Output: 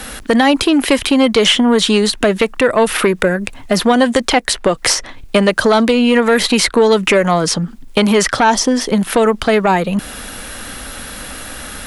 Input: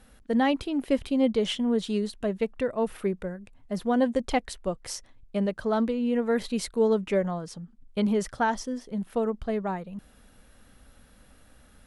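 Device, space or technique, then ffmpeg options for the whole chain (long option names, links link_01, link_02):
mastering chain: -filter_complex "[0:a]equalizer=frequency=320:width_type=o:width=0.77:gain=4,acrossover=split=120|1000|2200|5500[link_01][link_02][link_03][link_04][link_05];[link_01]acompressor=threshold=-51dB:ratio=4[link_06];[link_02]acompressor=threshold=-31dB:ratio=4[link_07];[link_03]acompressor=threshold=-44dB:ratio=4[link_08];[link_04]acompressor=threshold=-51dB:ratio=4[link_09];[link_05]acompressor=threshold=-55dB:ratio=4[link_10];[link_06][link_07][link_08][link_09][link_10]amix=inputs=5:normalize=0,acompressor=threshold=-36dB:ratio=1.5,asoftclip=type=tanh:threshold=-26.5dB,tiltshelf=frequency=660:gain=-6,alimiter=level_in=28dB:limit=-1dB:release=50:level=0:latency=1,volume=-1dB"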